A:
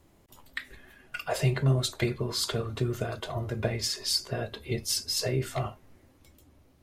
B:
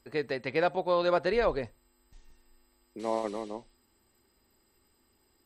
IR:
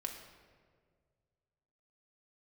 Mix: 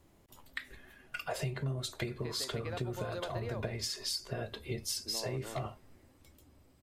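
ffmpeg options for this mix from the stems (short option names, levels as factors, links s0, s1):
-filter_complex "[0:a]volume=0.708[s0];[1:a]acompressor=threshold=0.0398:ratio=6,adelay=2100,volume=0.398[s1];[s0][s1]amix=inputs=2:normalize=0,acompressor=threshold=0.0224:ratio=6"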